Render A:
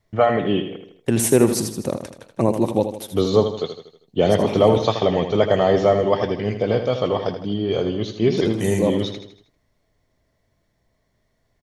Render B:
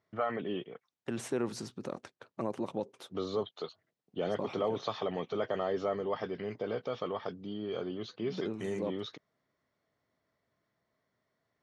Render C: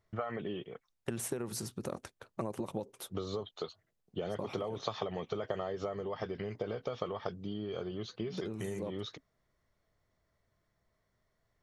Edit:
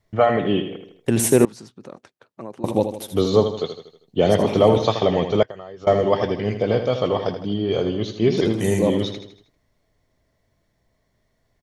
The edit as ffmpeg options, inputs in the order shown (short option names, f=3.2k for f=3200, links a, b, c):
-filter_complex "[0:a]asplit=3[a][b][c];[a]atrim=end=1.452[d];[1:a]atrim=start=1.448:end=2.642[e];[b]atrim=start=2.638:end=5.432[f];[2:a]atrim=start=5.428:end=5.872[g];[c]atrim=start=5.868[h];[d][e]acrossfade=d=0.004:c1=hsin:c2=hsin[i];[i][f]acrossfade=d=0.004:c1=hsin:c2=hsin[j];[j][g]acrossfade=d=0.004:c1=hsin:c2=hsin[k];[k][h]acrossfade=d=0.004:c1=hsin:c2=hsin"